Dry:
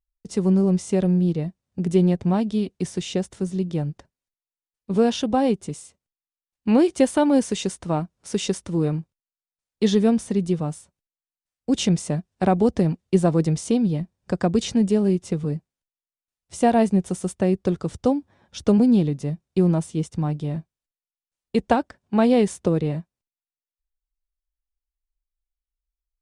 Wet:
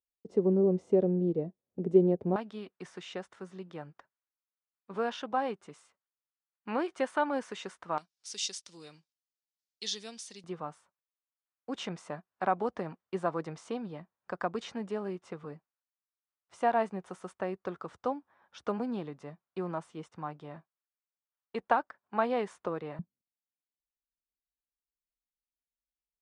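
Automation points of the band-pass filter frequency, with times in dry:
band-pass filter, Q 1.8
440 Hz
from 2.36 s 1.3 kHz
from 7.98 s 4.9 kHz
from 10.44 s 1.2 kHz
from 22.99 s 220 Hz

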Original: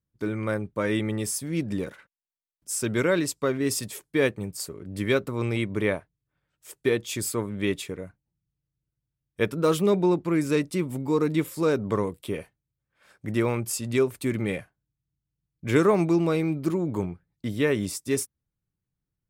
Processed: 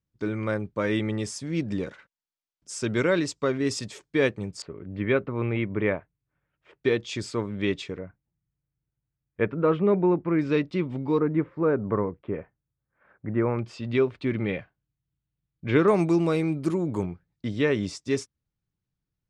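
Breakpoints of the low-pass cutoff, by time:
low-pass 24 dB/octave
6.8 kHz
from 4.62 s 2.7 kHz
from 6.83 s 5.8 kHz
from 7.98 s 2.3 kHz
from 10.39 s 4 kHz
from 11.20 s 1.8 kHz
from 13.59 s 3.9 kHz
from 15.88 s 10 kHz
from 17.03 s 6.2 kHz

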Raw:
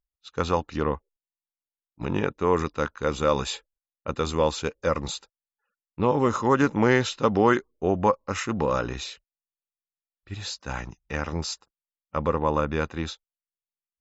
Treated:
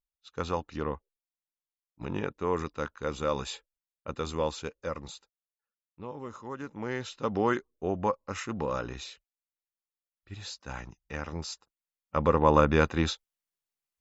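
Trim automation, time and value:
4.45 s -7 dB
6.01 s -18.5 dB
6.64 s -18.5 dB
7.37 s -7 dB
11.49 s -7 dB
12.59 s +3.5 dB

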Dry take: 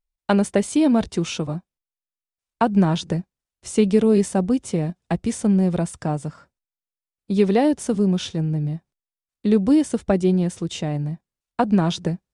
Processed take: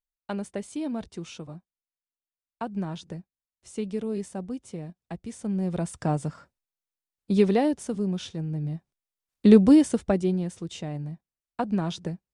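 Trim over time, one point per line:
5.32 s -14 dB
6.09 s -1.5 dB
7.34 s -1.5 dB
7.88 s -8.5 dB
8.45 s -8.5 dB
9.46 s +4 dB
10.44 s -8.5 dB

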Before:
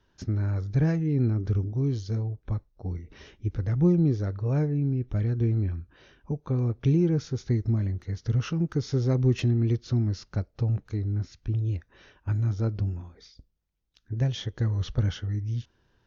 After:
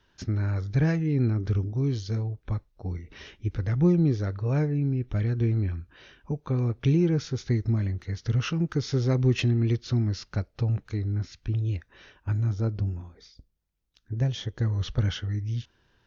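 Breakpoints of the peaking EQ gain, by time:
peaking EQ 2.7 kHz 2.4 oct
11.73 s +6.5 dB
12.61 s -0.5 dB
14.45 s -0.5 dB
15.08 s +5.5 dB

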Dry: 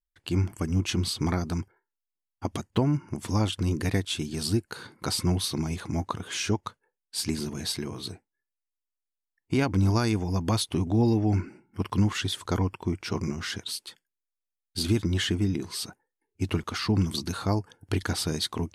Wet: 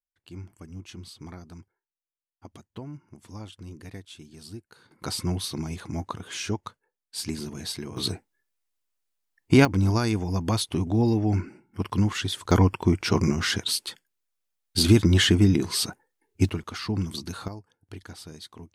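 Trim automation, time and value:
-15 dB
from 4.91 s -2.5 dB
from 7.97 s +8.5 dB
from 9.65 s +0.5 dB
from 12.51 s +7.5 dB
from 16.49 s -3.5 dB
from 17.48 s -14 dB

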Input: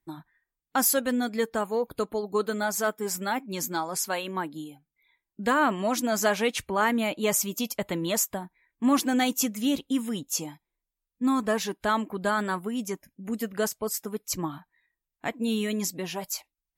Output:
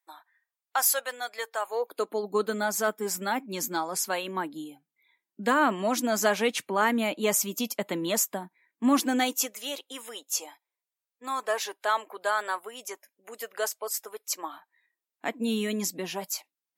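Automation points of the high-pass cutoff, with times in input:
high-pass 24 dB/octave
1.61 s 620 Hz
2.28 s 190 Hz
9.00 s 190 Hz
9.61 s 490 Hz
14.38 s 490 Hz
15.39 s 190 Hz

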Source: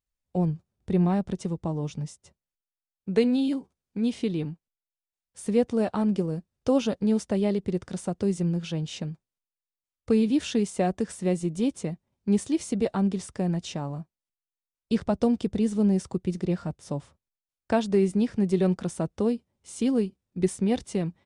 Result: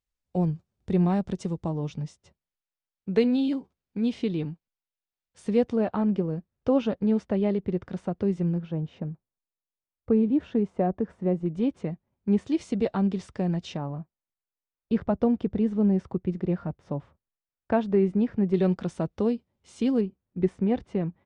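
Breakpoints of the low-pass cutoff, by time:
7.7 kHz
from 1.69 s 4.6 kHz
from 5.76 s 2.5 kHz
from 8.58 s 1.2 kHz
from 11.46 s 2.3 kHz
from 12.47 s 4.1 kHz
from 13.77 s 2 kHz
from 18.54 s 4.3 kHz
from 20.01 s 1.9 kHz

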